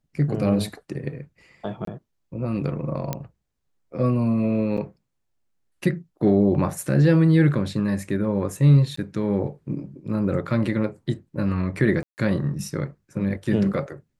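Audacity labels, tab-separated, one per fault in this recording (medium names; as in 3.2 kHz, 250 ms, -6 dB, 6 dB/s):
1.850000	1.870000	dropout 23 ms
3.130000	3.130000	pop -11 dBFS
4.770000	4.780000	dropout 7 ms
8.960000	8.970000	dropout 14 ms
12.030000	12.180000	dropout 149 ms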